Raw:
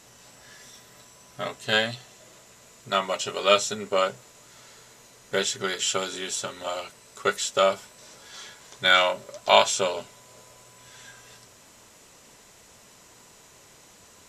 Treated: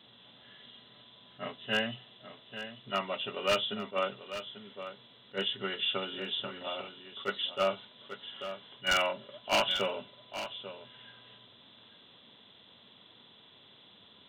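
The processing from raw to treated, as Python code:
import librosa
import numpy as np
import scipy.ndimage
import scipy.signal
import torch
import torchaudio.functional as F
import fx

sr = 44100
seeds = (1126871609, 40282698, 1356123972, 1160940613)

p1 = fx.freq_compress(x, sr, knee_hz=2700.0, ratio=4.0)
p2 = scipy.signal.sosfilt(scipy.signal.butter(4, 82.0, 'highpass', fs=sr, output='sos'), p1)
p3 = fx.peak_eq(p2, sr, hz=230.0, db=6.5, octaves=0.71)
p4 = 10.0 ** (-11.5 / 20.0) * (np.abs((p3 / 10.0 ** (-11.5 / 20.0) + 3.0) % 4.0 - 2.0) - 1.0)
p5 = p4 + fx.echo_single(p4, sr, ms=842, db=-11.5, dry=0)
p6 = fx.attack_slew(p5, sr, db_per_s=350.0)
y = F.gain(torch.from_numpy(p6), -8.0).numpy()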